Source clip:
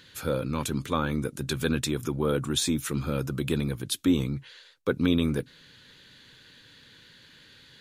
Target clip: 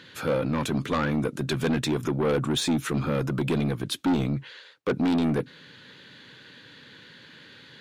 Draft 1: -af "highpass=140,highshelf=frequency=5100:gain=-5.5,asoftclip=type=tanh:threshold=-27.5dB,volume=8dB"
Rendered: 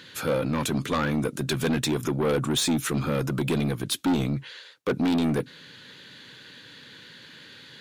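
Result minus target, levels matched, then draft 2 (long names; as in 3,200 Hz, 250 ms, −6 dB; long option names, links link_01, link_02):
8,000 Hz band +5.0 dB
-af "highpass=140,highshelf=frequency=5100:gain=-15.5,asoftclip=type=tanh:threshold=-27.5dB,volume=8dB"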